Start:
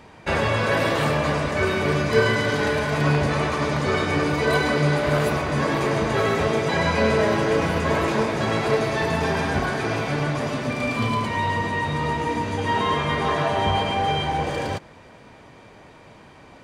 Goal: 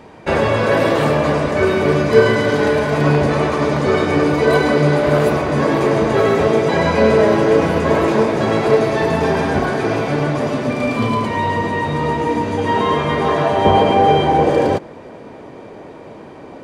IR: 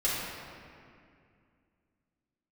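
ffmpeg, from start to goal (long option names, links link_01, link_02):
-af "asetnsamples=nb_out_samples=441:pad=0,asendcmd='13.65 equalizer g 14.5',equalizer=frequency=390:width_type=o:width=2.6:gain=8,asoftclip=type=hard:threshold=-2dB,volume=1dB"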